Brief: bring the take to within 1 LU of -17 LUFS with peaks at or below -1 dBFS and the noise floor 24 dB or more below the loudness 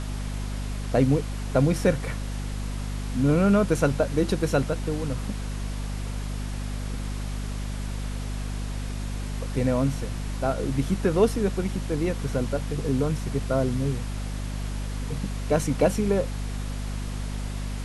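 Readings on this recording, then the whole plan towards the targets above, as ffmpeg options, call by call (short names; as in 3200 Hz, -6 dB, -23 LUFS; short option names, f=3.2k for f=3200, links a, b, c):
hum 50 Hz; harmonics up to 250 Hz; hum level -28 dBFS; noise floor -31 dBFS; noise floor target -51 dBFS; loudness -27.0 LUFS; peak -8.0 dBFS; loudness target -17.0 LUFS
-> -af "bandreject=f=50:t=h:w=6,bandreject=f=100:t=h:w=6,bandreject=f=150:t=h:w=6,bandreject=f=200:t=h:w=6,bandreject=f=250:t=h:w=6"
-af "afftdn=nr=20:nf=-31"
-af "volume=10dB,alimiter=limit=-1dB:level=0:latency=1"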